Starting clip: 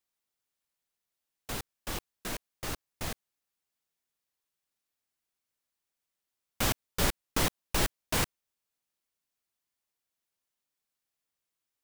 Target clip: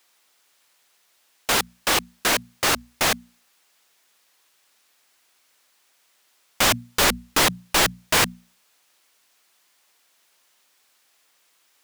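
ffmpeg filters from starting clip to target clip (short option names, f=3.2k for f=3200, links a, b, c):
-filter_complex "[0:a]bandreject=f=60:t=h:w=6,bandreject=f=120:t=h:w=6,bandreject=f=180:t=h:w=6,bandreject=f=240:t=h:w=6,asplit=2[a][b];[b]highpass=f=720:p=1,volume=29dB,asoftclip=type=tanh:threshold=-13.5dB[c];[a][c]amix=inputs=2:normalize=0,lowpass=f=6.4k:p=1,volume=-6dB,volume=4dB"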